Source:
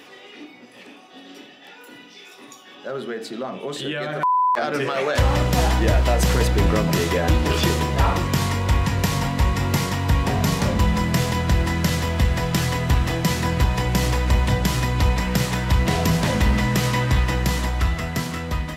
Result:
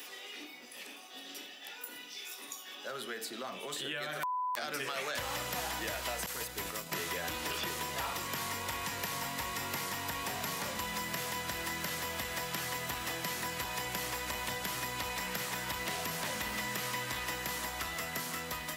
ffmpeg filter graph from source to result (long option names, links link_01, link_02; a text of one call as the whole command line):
ffmpeg -i in.wav -filter_complex "[0:a]asettb=1/sr,asplit=3[link_01][link_02][link_03];[link_01]atrim=end=6.264[link_04];[link_02]atrim=start=6.26:end=6.92,asetpts=PTS-STARTPTS,afade=type=in:duration=0.004:curve=qsin,afade=type=out:start_time=0.656:duration=0.004:curve=qsin,agate=range=-33dB:threshold=-11dB:ratio=3:release=100:detection=peak,highshelf=frequency=3800:gain=11.5[link_05];[link_03]atrim=start=6.916[link_06];[link_04][link_05]acrossfade=duration=0.004:curve1=hsin:curve2=qsin[link_07];[link_07][link_06]acrossfade=duration=0.004:curve1=qsin:curve2=hsin,acrossover=split=3700[link_08][link_09];[link_09]acompressor=threshold=-36dB:ratio=4:attack=1:release=60[link_10];[link_08][link_10]amix=inputs=2:normalize=0,aemphasis=mode=production:type=riaa,acrossover=split=210|870|2100[link_11][link_12][link_13][link_14];[link_11]acompressor=threshold=-44dB:ratio=4[link_15];[link_12]acompressor=threshold=-39dB:ratio=4[link_16];[link_13]acompressor=threshold=-35dB:ratio=4[link_17];[link_14]acompressor=threshold=-34dB:ratio=4[link_18];[link_15][link_16][link_17][link_18]amix=inputs=4:normalize=0,volume=-6dB" out.wav